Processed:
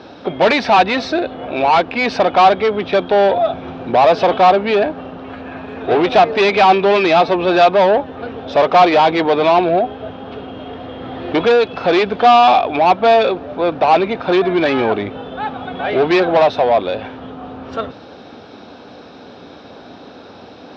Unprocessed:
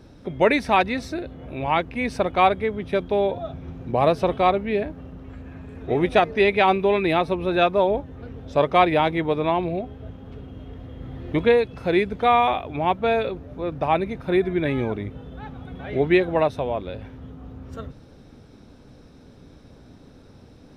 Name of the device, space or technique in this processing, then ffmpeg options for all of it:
overdrive pedal into a guitar cabinet: -filter_complex "[0:a]asplit=2[s0][s1];[s1]highpass=f=720:p=1,volume=17.8,asoftclip=type=tanh:threshold=0.562[s2];[s0][s2]amix=inputs=2:normalize=0,lowpass=f=7400:p=1,volume=0.501,highpass=83,equalizer=f=140:t=q:w=4:g=-7,equalizer=f=730:t=q:w=4:g=5,equalizer=f=2000:t=q:w=4:g=-6,lowpass=f=4500:w=0.5412,lowpass=f=4500:w=1.3066"

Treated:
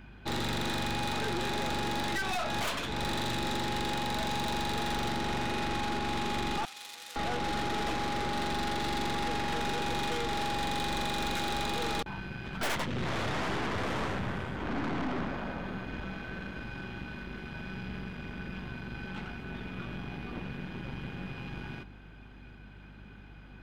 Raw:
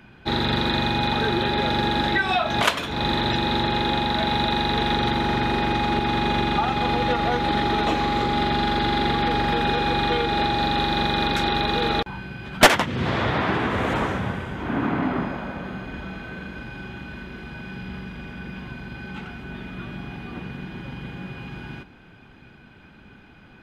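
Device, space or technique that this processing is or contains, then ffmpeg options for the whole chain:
valve amplifier with mains hum: -filter_complex "[0:a]aeval=exprs='(tanh(28.2*val(0)+0.65)-tanh(0.65))/28.2':c=same,aeval=exprs='val(0)+0.00355*(sin(2*PI*50*n/s)+sin(2*PI*2*50*n/s)/2+sin(2*PI*3*50*n/s)/3+sin(2*PI*4*50*n/s)/4+sin(2*PI*5*50*n/s)/5)':c=same,asettb=1/sr,asplit=3[s0][s1][s2];[s0]atrim=end=6.654[s3];[s1]atrim=start=6.65:end=7.16,asetpts=PTS-STARTPTS,afade=t=in:d=0.004:c=qsin,afade=t=out:st=0.506:d=0.004:c=qsin,aderivative[s4];[s2]atrim=start=7.156[s5];[s3][s4]acrossfade=d=0.004:c1=hsin:c2=qsin[s6];[s6][s5]acrossfade=d=0.004:c1=qsin:c2=hsin,volume=0.841"

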